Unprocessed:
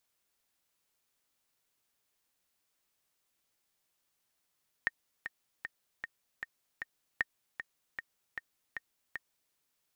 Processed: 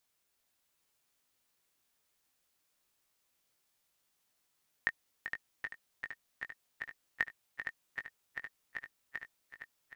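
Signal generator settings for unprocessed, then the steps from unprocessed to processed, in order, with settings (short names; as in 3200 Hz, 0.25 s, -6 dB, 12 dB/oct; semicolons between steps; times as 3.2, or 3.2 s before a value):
metronome 154 bpm, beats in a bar 6, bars 2, 1840 Hz, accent 9.5 dB -15.5 dBFS
doubler 19 ms -8.5 dB; on a send: swung echo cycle 0.772 s, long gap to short 1.5:1, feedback 38%, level -7.5 dB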